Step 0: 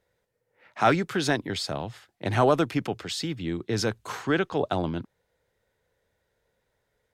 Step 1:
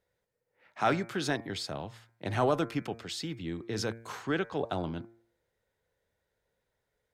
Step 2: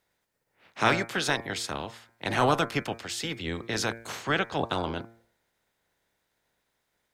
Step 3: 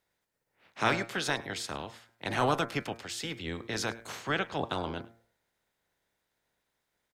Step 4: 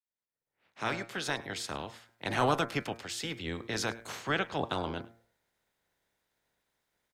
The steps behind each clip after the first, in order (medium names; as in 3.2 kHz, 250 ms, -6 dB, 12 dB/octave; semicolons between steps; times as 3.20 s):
de-hum 114.8 Hz, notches 21; trim -6 dB
spectral peaks clipped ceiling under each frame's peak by 15 dB; trim +4 dB
delay 103 ms -22 dB; trim -4 dB
fade-in on the opening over 1.77 s